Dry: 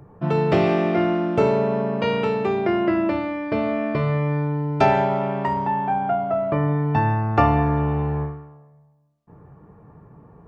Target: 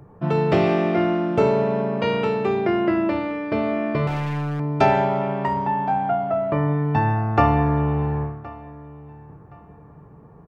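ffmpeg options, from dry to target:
ffmpeg -i in.wav -filter_complex "[0:a]asplit=2[link_01][link_02];[link_02]adelay=1069,lowpass=frequency=3900:poles=1,volume=-20dB,asplit=2[link_03][link_04];[link_04]adelay=1069,lowpass=frequency=3900:poles=1,volume=0.28[link_05];[link_01][link_03][link_05]amix=inputs=3:normalize=0,asettb=1/sr,asplit=3[link_06][link_07][link_08];[link_06]atrim=end=4.074[link_09];[link_07]atrim=start=4.07:end=4.6,asetpts=PTS-STARTPTS,afade=type=in:duration=0.004:curve=qsin,afade=type=out:start_time=0.526:duration=0.004:curve=qsin,aeval=exprs='0.106*(abs(mod(val(0)/0.106+3,4)-2)-1)':channel_layout=same[link_10];[link_08]atrim=start=4.596[link_11];[link_09][link_10]acrossfade=duration=0.004:curve1=hsin:curve2=qsin[link_12];[link_12][link_11]acrossfade=duration=0.004:curve1=qsin:curve2=hsin" out.wav

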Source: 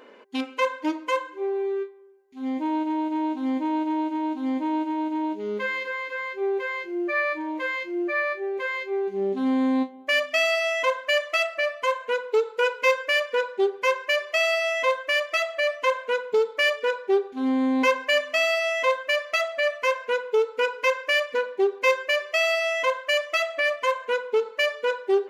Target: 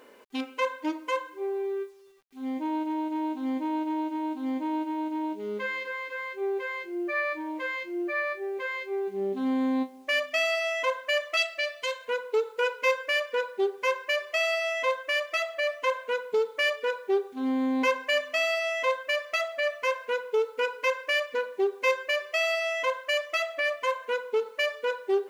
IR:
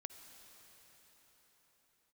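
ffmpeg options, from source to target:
-filter_complex "[0:a]asettb=1/sr,asplit=3[link_01][link_02][link_03];[link_01]atrim=end=11.374[link_04];[link_02]atrim=start=11.37:end=12.08,asetpts=PTS-STARTPTS,afade=type=in:duration=0.004:curve=qsin,afade=type=out:start_time=0.706:duration=0.004:curve=qsin,equalizer=frequency=250:width_type=o:width=1:gain=-6,equalizer=frequency=1000:width_type=o:width=1:gain=-9,equalizer=frequency=4000:width_type=o:width=1:gain=9,equalizer=frequency=8000:width_type=o:width=1:gain=4[link_05];[link_03]atrim=start=12.076[link_06];[link_04][link_05]acrossfade=duration=0.004:curve1=hsin:curve2=qsin[link_07];[link_07][link_06]acrossfade=duration=0.004:curve1=qsin:curve2=hsin,acrusher=bits=9:mix=0:aa=0.000001,volume=-4dB"

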